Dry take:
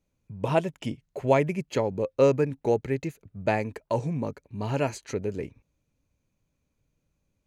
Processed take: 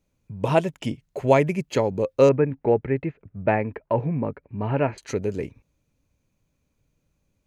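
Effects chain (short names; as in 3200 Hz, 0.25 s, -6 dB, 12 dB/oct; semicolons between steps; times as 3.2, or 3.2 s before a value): 2.29–4.98 LPF 2400 Hz 24 dB/oct; gain +4 dB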